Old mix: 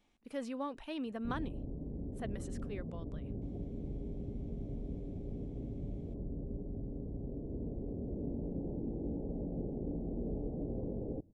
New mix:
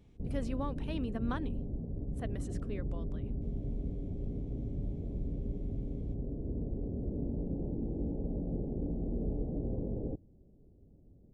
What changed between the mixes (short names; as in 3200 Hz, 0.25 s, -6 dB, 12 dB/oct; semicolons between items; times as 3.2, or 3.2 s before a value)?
background: entry -1.05 s; master: add low shelf 160 Hz +6.5 dB